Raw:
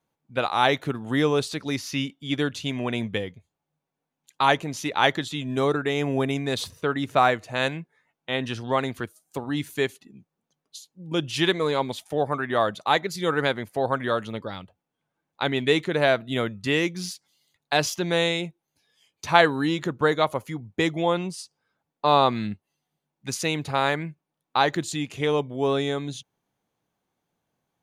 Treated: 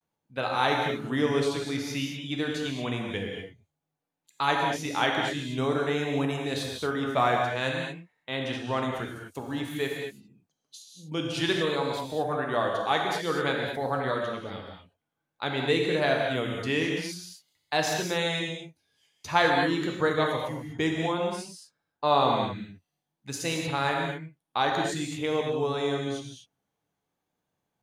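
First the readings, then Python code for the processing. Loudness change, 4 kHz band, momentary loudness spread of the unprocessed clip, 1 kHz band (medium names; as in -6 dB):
-3.0 dB, -3.0 dB, 13 LU, -3.0 dB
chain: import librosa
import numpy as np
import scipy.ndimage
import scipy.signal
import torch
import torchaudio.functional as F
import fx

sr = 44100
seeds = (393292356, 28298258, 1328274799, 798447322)

y = fx.rev_gated(x, sr, seeds[0], gate_ms=260, shape='flat', drr_db=0.0)
y = fx.vibrato(y, sr, rate_hz=0.52, depth_cents=57.0)
y = y * librosa.db_to_amplitude(-6.0)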